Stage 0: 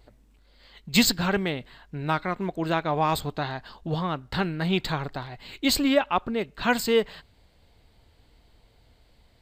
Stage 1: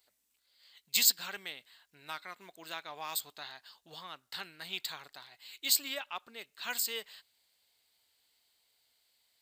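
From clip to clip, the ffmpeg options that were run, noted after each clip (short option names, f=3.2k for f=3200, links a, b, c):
-af "aderivative"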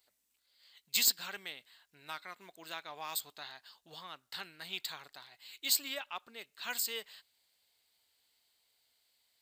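-af "asoftclip=type=tanh:threshold=-12.5dB,volume=-1.5dB"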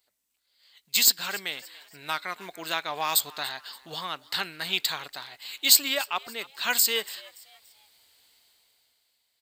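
-filter_complex "[0:a]dynaudnorm=f=230:g=9:m=14dB,asplit=4[a][b][c][d];[b]adelay=287,afreqshift=130,volume=-21dB[e];[c]adelay=574,afreqshift=260,volume=-29dB[f];[d]adelay=861,afreqshift=390,volume=-36.9dB[g];[a][e][f][g]amix=inputs=4:normalize=0"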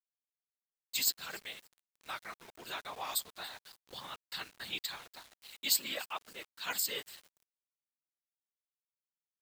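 -af "afftfilt=real='hypot(re,im)*cos(2*PI*random(0))':imag='hypot(re,im)*sin(2*PI*random(1))':win_size=512:overlap=0.75,agate=range=-33dB:threshold=-54dB:ratio=3:detection=peak,aeval=exprs='val(0)*gte(abs(val(0)),0.00596)':c=same,volume=-5.5dB"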